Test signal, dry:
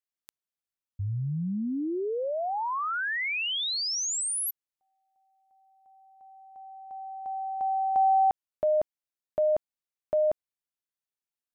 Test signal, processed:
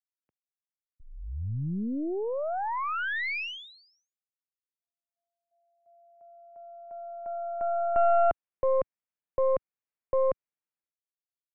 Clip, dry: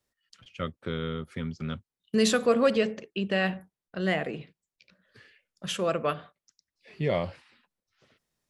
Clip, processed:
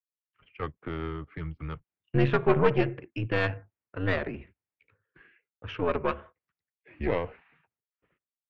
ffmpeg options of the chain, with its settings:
ffmpeg -i in.wav -af "highpass=frequency=160:width_type=q:width=0.5412,highpass=frequency=160:width_type=q:width=1.307,lowpass=frequency=2700:width_type=q:width=0.5176,lowpass=frequency=2700:width_type=q:width=0.7071,lowpass=frequency=2700:width_type=q:width=1.932,afreqshift=-84,aeval=exprs='0.299*(cos(1*acos(clip(val(0)/0.299,-1,1)))-cos(1*PI/2))+0.00944*(cos(3*acos(clip(val(0)/0.299,-1,1)))-cos(3*PI/2))+0.0596*(cos(4*acos(clip(val(0)/0.299,-1,1)))-cos(4*PI/2))':channel_layout=same,agate=range=-33dB:threshold=-58dB:ratio=3:release=476:detection=peak" out.wav

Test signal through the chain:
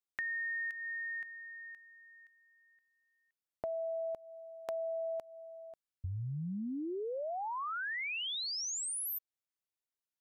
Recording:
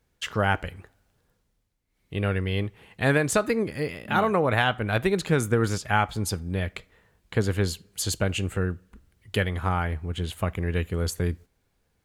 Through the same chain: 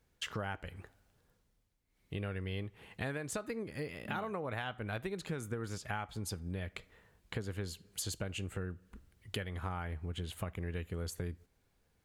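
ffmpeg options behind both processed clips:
ffmpeg -i in.wav -af "acompressor=threshold=-34dB:ratio=5,volume=-3dB" out.wav

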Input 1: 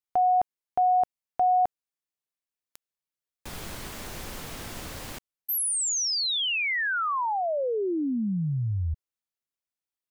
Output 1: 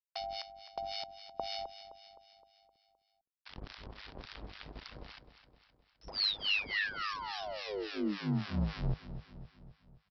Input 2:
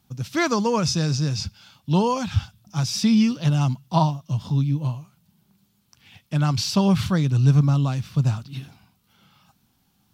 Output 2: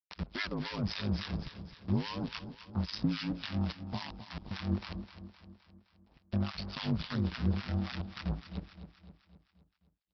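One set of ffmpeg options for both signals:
ffmpeg -i in.wav -filter_complex "[0:a]agate=range=-13dB:threshold=-45dB:ratio=3:release=163:detection=peak,acompressor=threshold=-21dB:ratio=4:attack=0.66:release=935:knee=1:detection=rms,aresample=11025,acrusher=bits=6:dc=4:mix=0:aa=0.000001,aresample=44100,acrossover=split=1000[link_01][link_02];[link_01]aeval=exprs='val(0)*(1-1/2+1/2*cos(2*PI*3.6*n/s))':channel_layout=same[link_03];[link_02]aeval=exprs='val(0)*(1-1/2-1/2*cos(2*PI*3.6*n/s))':channel_layout=same[link_04];[link_03][link_04]amix=inputs=2:normalize=0,acrossover=split=320|1700[link_05][link_06][link_07];[link_06]acompressor=threshold=-40dB:ratio=6:release=349:knee=2.83:detection=peak[link_08];[link_05][link_08][link_07]amix=inputs=3:normalize=0,aeval=exprs='val(0)*sin(2*PI*51*n/s)':channel_layout=same,asplit=2[link_09][link_10];[link_10]aecho=0:1:259|518|777|1036|1295|1554:0.251|0.136|0.0732|0.0396|0.0214|0.0115[link_11];[link_09][link_11]amix=inputs=2:normalize=0" out.wav

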